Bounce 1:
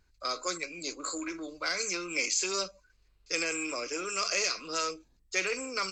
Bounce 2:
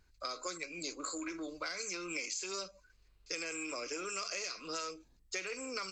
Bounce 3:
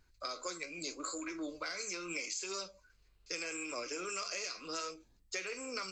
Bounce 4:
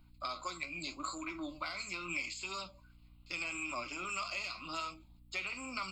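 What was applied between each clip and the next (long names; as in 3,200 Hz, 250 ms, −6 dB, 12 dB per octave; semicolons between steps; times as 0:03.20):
downward compressor, threshold −37 dBFS, peak gain reduction 12 dB
flanger 0.81 Hz, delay 7.3 ms, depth 7.6 ms, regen +68%; level +4 dB
phaser with its sweep stopped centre 1,700 Hz, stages 6; mains hum 60 Hz, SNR 20 dB; level +5.5 dB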